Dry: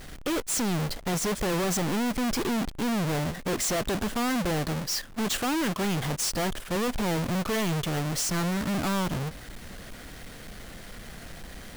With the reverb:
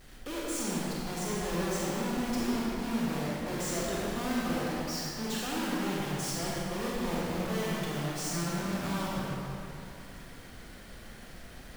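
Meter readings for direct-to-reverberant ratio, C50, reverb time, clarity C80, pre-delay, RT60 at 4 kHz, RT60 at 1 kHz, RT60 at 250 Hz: -6.5 dB, -4.5 dB, 2.7 s, -2.5 dB, 26 ms, 1.9 s, 2.8 s, 2.6 s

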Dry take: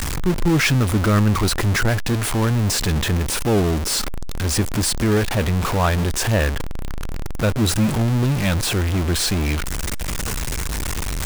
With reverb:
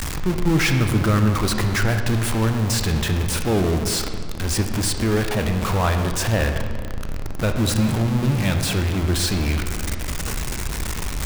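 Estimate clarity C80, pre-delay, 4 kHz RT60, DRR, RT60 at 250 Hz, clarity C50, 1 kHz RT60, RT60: 7.5 dB, 26 ms, 1.3 s, 5.0 dB, 2.3 s, 6.5 dB, 1.8 s, 1.9 s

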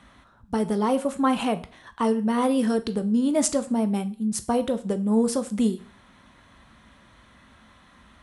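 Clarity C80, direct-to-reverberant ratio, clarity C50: 21.0 dB, 10.0 dB, 16.5 dB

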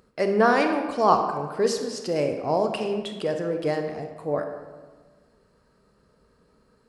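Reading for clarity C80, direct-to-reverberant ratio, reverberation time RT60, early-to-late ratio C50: 8.0 dB, 4.5 dB, 1.4 s, 6.0 dB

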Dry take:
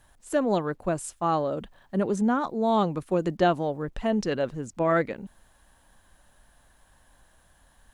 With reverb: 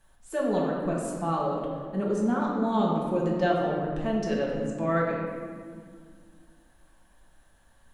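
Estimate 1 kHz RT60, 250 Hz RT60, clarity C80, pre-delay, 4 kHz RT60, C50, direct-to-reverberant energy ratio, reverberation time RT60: 1.7 s, 2.8 s, 2.0 dB, 5 ms, 1.1 s, 0.5 dB, -4.0 dB, 1.9 s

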